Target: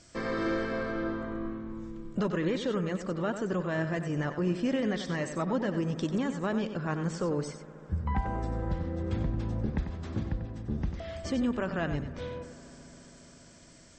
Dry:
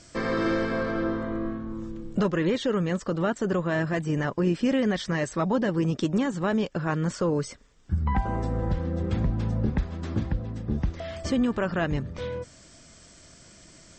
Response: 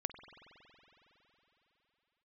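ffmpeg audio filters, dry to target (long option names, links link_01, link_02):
-filter_complex "[0:a]asplit=2[link_01][link_02];[1:a]atrim=start_sample=2205,asetrate=29106,aresample=44100,adelay=94[link_03];[link_02][link_03]afir=irnorm=-1:irlink=0,volume=-10dB[link_04];[link_01][link_04]amix=inputs=2:normalize=0,volume=-5.5dB"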